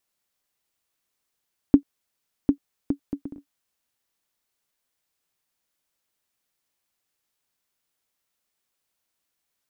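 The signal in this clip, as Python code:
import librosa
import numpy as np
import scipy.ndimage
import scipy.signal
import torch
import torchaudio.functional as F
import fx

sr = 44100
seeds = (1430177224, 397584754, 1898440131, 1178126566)

y = fx.bouncing_ball(sr, first_gap_s=0.75, ratio=0.55, hz=282.0, decay_ms=91.0, level_db=-2.5)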